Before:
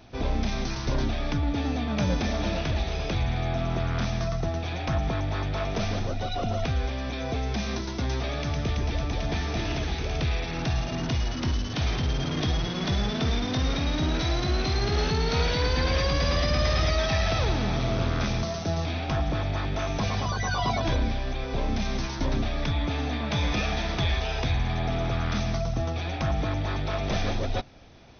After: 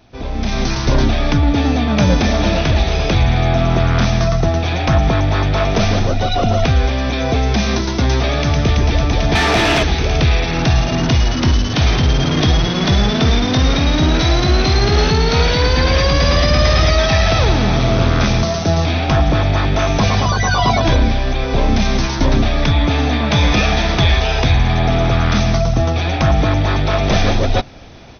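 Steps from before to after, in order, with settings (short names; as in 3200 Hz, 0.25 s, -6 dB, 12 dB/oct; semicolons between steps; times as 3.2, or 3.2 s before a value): AGC gain up to 12.5 dB; 9.35–9.83 overdrive pedal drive 19 dB, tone 2900 Hz, clips at -6 dBFS; gain +1 dB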